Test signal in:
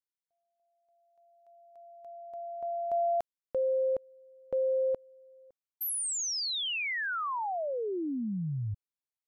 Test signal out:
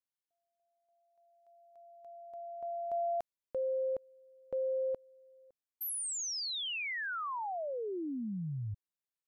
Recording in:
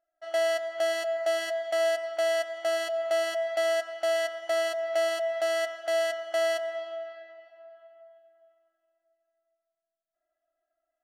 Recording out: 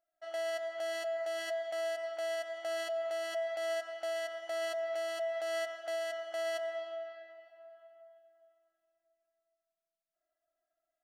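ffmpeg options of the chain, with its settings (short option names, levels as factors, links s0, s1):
-af "alimiter=level_in=1.19:limit=0.0631:level=0:latency=1:release=57,volume=0.841,volume=0.596"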